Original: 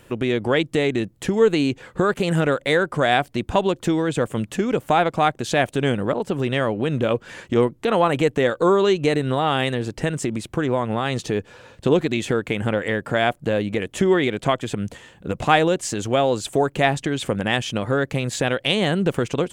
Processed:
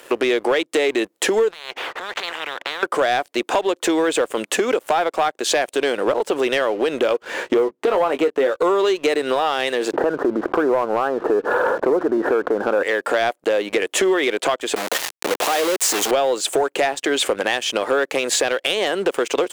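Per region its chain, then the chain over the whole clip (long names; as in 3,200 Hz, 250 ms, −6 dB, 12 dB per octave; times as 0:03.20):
0:01.51–0:02.83: head-to-tape spacing loss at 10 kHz 45 dB + downward compressor 4 to 1, threshold −31 dBFS + every bin compressed towards the loudest bin 10 to 1
0:07.22–0:08.53: spectral tilt −2.5 dB per octave + double-tracking delay 19 ms −8.5 dB
0:09.93–0:12.83: Butterworth low-pass 1,600 Hz 72 dB per octave + low-shelf EQ 110 Hz +12 dB + envelope flattener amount 70%
0:14.76–0:16.11: downward compressor 3 to 1, threshold −35 dBFS + log-companded quantiser 2 bits
whole clip: high-pass filter 360 Hz 24 dB per octave; downward compressor 6 to 1, threshold −29 dBFS; leveller curve on the samples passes 2; level +6.5 dB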